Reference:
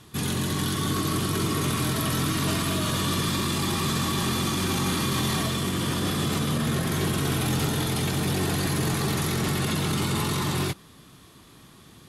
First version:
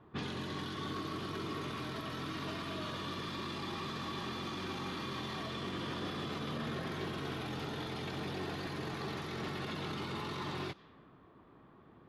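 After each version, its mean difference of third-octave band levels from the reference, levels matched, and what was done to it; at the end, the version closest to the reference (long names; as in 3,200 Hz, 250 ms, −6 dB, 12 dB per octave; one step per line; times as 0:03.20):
5.5 dB: low-pass that shuts in the quiet parts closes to 1,100 Hz, open at −22 dBFS
bass and treble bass −9 dB, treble +9 dB
downward compressor, threshold −29 dBFS, peak gain reduction 9 dB
high-frequency loss of the air 310 metres
level −2.5 dB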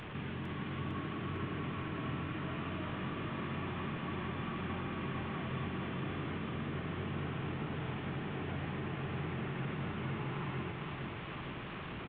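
12.5 dB: linear delta modulator 16 kbit/s, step −29.5 dBFS
downward compressor, threshold −28 dBFS, peak gain reduction 7 dB
flanger 1.7 Hz, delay 4.5 ms, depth 3.6 ms, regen +89%
repeating echo 454 ms, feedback 54%, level −5 dB
level −4.5 dB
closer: first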